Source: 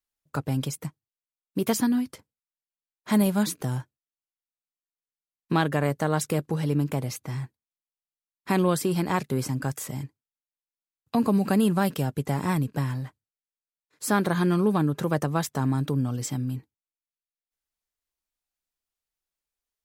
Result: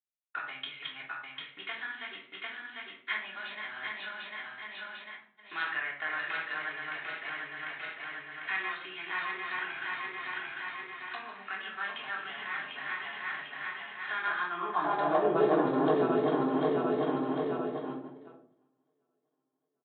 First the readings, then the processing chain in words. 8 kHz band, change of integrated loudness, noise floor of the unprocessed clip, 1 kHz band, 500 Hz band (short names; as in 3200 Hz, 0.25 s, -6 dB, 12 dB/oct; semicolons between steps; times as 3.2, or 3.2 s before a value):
under -40 dB, -7.0 dB, under -85 dBFS, -1.5 dB, -2.0 dB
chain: regenerating reverse delay 0.374 s, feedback 70%, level -2 dB; HPF 150 Hz 12 dB/oct; notch 510 Hz, Q 12; gate -37 dBFS, range -34 dB; low shelf 460 Hz +7 dB; compressor 6:1, threshold -22 dBFS, peak gain reduction 10.5 dB; high-pass sweep 1800 Hz -> 460 Hz, 14.15–15.4; shoebox room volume 620 m³, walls furnished, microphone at 3.3 m; downsampling 8000 Hz; gain -3.5 dB; AAC 48 kbps 44100 Hz